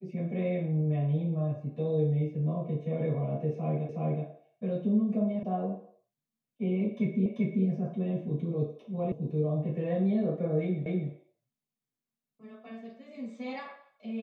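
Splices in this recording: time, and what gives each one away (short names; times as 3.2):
3.89 repeat of the last 0.37 s
5.43 sound cut off
7.26 repeat of the last 0.39 s
9.12 sound cut off
10.86 repeat of the last 0.25 s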